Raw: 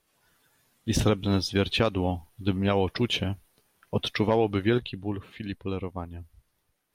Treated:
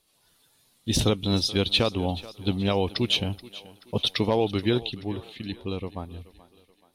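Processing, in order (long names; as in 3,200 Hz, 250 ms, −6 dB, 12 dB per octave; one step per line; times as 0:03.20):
graphic EQ with 15 bands 1,600 Hz −6 dB, 4,000 Hz +9 dB, 10,000 Hz +6 dB
feedback echo with a high-pass in the loop 429 ms, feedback 48%, high-pass 250 Hz, level −17.5 dB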